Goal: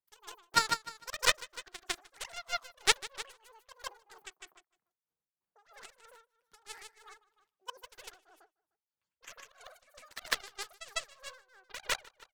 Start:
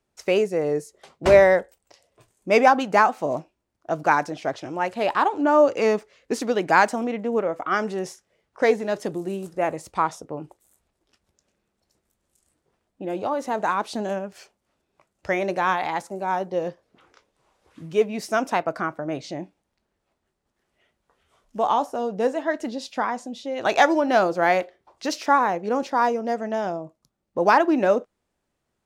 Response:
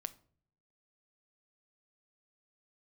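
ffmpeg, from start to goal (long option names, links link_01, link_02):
-filter_complex "[0:a]asetrate=103194,aresample=44100,aeval=exprs='0.75*(cos(1*acos(clip(val(0)/0.75,-1,1)))-cos(1*PI/2))+0.266*(cos(3*acos(clip(val(0)/0.75,-1,1)))-cos(3*PI/2))':channel_layout=same,asplit=2[link_01][link_02];[link_02]aecho=0:1:152|304|456:0.708|0.149|0.0312[link_03];[link_01][link_03]amix=inputs=2:normalize=0,tremolo=f=3.1:d=0.86,volume=-1dB"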